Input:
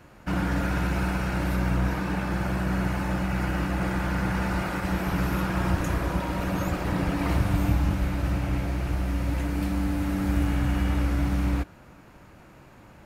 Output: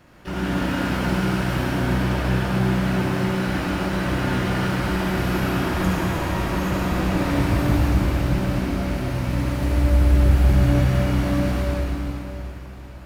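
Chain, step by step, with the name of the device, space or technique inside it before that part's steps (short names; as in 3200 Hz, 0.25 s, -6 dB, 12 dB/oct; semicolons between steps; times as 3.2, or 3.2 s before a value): 9.62–10.31 resonant low shelf 120 Hz +7.5 dB, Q 1.5; shimmer-style reverb (harmoniser +12 st -7 dB; reverb RT60 3.5 s, pre-delay 55 ms, DRR -5 dB); gain -2.5 dB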